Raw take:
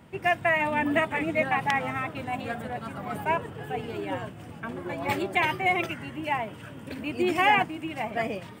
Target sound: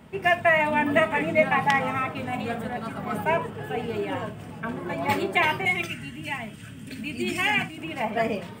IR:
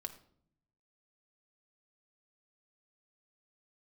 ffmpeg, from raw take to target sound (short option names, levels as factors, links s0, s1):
-filter_complex "[0:a]asettb=1/sr,asplit=3[s0][s1][s2];[s0]atrim=end=5.654[s3];[s1]atrim=start=5.65:end=7.78,asetpts=PTS-STARTPTS,afade=t=in:d=0.004:c=qsin,afade=t=out:st=2.126:d=0.004:c=qsin,equalizer=f=500:t=o:w=1:g=-11,equalizer=f=1000:t=o:w=1:g=-11,equalizer=f=8000:t=o:w=1:g=5[s4];[s2]atrim=start=7.776[s5];[s3][s4]acrossfade=d=0.004:c1=hsin:c2=qsin[s6];[s6][s5]acrossfade=d=0.004:c1=qsin:c2=hsin[s7];[1:a]atrim=start_sample=2205,afade=t=out:st=0.13:d=0.01,atrim=end_sample=6174[s8];[s7][s8]afir=irnorm=-1:irlink=0,volume=2"